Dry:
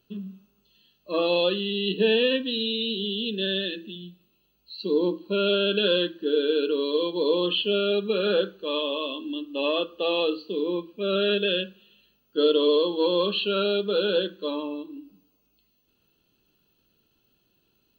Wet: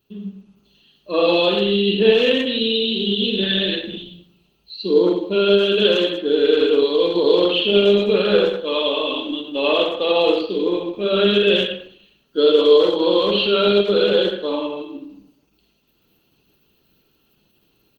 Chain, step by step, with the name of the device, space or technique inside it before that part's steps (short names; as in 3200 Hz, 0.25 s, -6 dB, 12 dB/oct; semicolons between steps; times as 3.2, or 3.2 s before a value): speakerphone in a meeting room (reverb RT60 0.45 s, pre-delay 41 ms, DRR 0.5 dB; speakerphone echo 0.11 s, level -9 dB; AGC gain up to 6 dB; Opus 16 kbps 48000 Hz)